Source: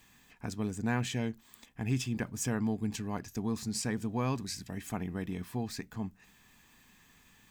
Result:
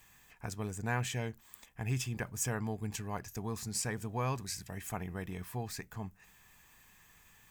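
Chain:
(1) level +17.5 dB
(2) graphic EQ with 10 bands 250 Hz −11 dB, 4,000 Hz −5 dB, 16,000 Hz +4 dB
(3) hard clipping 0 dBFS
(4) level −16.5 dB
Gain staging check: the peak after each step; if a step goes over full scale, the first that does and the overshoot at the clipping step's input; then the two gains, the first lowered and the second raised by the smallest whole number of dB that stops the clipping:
−1.5, −4.0, −4.0, −20.5 dBFS
no step passes full scale

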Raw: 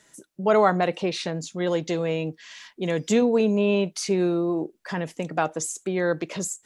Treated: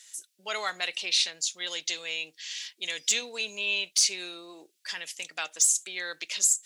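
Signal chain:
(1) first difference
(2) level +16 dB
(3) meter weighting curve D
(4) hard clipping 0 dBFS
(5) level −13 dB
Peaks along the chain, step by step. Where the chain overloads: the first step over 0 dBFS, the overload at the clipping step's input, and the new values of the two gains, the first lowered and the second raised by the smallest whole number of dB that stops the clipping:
−18.0, −2.0, +4.5, 0.0, −13.0 dBFS
step 3, 4.5 dB
step 2 +11 dB, step 5 −8 dB

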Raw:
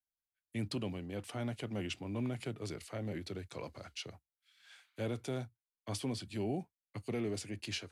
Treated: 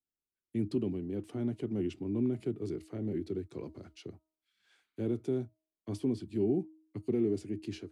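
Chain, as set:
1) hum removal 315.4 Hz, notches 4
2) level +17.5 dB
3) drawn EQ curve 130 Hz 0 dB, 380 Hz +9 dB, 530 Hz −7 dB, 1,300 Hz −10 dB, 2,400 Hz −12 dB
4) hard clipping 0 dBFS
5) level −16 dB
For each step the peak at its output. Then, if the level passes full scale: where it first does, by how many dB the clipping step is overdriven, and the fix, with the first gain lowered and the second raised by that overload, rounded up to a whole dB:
−26.5, −9.0, −3.0, −3.0, −19.0 dBFS
no step passes full scale

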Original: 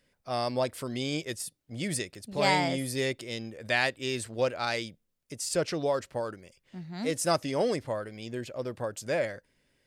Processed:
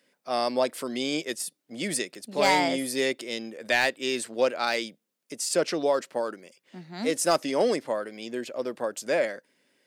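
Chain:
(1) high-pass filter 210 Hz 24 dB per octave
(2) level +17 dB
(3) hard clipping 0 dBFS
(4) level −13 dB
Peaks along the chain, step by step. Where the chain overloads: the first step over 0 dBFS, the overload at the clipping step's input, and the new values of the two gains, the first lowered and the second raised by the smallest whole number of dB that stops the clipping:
−10.0, +7.0, 0.0, −13.0 dBFS
step 2, 7.0 dB
step 2 +10 dB, step 4 −6 dB

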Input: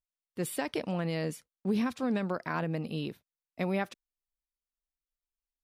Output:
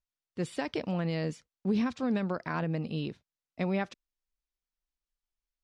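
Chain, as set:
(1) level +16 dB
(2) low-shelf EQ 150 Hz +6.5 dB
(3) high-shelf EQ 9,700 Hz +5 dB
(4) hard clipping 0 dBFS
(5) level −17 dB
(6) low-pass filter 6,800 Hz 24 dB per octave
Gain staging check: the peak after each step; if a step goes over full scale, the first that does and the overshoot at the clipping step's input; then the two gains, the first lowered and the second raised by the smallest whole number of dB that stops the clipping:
−2.5, −1.5, −1.5, −1.5, −18.5, −18.5 dBFS
no step passes full scale

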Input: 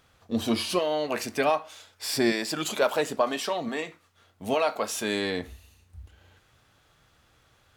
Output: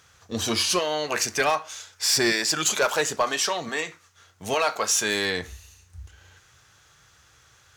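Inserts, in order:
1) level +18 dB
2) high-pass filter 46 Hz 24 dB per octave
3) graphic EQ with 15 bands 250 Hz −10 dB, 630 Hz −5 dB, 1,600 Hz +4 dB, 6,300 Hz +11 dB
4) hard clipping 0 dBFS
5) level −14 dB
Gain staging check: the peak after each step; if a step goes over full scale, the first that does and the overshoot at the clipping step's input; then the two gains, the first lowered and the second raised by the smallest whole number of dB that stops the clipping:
+7.5, +7.5, +8.5, 0.0, −14.0 dBFS
step 1, 8.5 dB
step 1 +9 dB, step 5 −5 dB

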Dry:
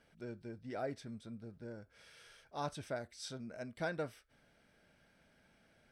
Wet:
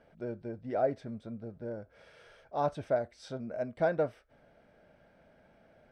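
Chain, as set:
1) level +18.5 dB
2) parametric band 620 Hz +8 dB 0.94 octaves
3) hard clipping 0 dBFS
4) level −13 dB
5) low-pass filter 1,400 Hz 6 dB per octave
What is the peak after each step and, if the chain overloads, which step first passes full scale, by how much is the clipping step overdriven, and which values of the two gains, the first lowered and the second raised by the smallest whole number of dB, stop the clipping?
−7.5, −3.0, −3.0, −16.0, −17.0 dBFS
no step passes full scale

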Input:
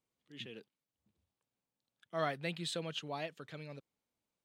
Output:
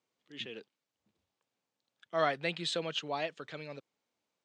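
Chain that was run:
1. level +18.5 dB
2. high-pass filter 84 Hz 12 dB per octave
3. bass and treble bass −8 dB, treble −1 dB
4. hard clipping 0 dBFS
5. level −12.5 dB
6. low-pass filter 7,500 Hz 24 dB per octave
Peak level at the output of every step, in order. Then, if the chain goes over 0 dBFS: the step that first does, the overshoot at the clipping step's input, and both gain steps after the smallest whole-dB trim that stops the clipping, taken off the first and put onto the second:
−2.5, −2.5, −4.0, −4.0, −16.5, −16.5 dBFS
no step passes full scale

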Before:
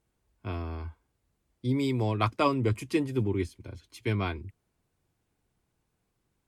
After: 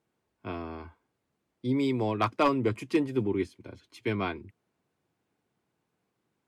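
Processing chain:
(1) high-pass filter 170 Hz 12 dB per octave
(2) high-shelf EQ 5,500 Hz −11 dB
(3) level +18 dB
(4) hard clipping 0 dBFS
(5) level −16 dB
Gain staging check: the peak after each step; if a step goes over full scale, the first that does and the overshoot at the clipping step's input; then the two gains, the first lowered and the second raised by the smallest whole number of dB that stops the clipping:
−10.5, −11.5, +6.5, 0.0, −16.0 dBFS
step 3, 6.5 dB
step 3 +11 dB, step 5 −9 dB

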